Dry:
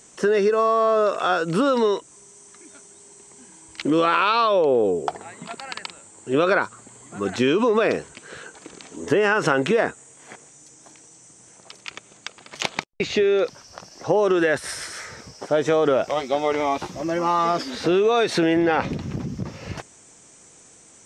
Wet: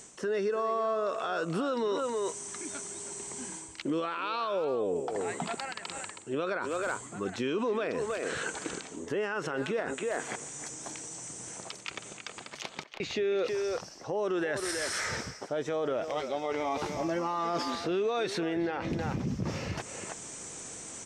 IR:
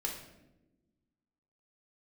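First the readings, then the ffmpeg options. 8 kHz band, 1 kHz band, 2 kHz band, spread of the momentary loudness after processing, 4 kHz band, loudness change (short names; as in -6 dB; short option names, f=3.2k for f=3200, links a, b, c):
0.0 dB, -11.0 dB, -9.5 dB, 10 LU, -8.5 dB, -12.0 dB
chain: -filter_complex "[0:a]asplit=2[a][b];[b]adelay=320,highpass=300,lowpass=3.4k,asoftclip=type=hard:threshold=-12.5dB,volume=-12dB[c];[a][c]amix=inputs=2:normalize=0,areverse,acompressor=threshold=-37dB:ratio=4,areverse,alimiter=level_in=5.5dB:limit=-24dB:level=0:latency=1:release=105,volume=-5.5dB,volume=7dB"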